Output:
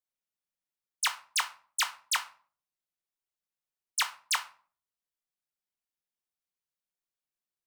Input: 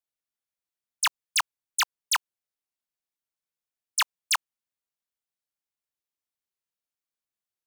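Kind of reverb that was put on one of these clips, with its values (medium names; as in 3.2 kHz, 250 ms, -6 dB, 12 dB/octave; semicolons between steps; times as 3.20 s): simulated room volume 380 m³, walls furnished, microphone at 0.99 m; trim -4.5 dB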